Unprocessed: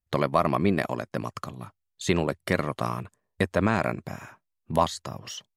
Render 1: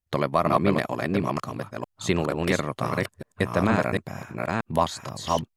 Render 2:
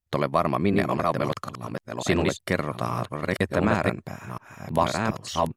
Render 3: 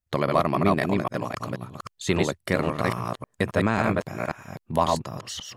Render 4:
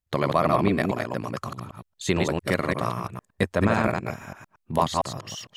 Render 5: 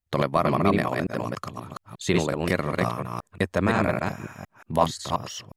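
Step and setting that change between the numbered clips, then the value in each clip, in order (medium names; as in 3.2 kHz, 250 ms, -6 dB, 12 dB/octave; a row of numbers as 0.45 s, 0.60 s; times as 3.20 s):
chunks repeated in reverse, time: 461 ms, 730 ms, 270 ms, 114 ms, 178 ms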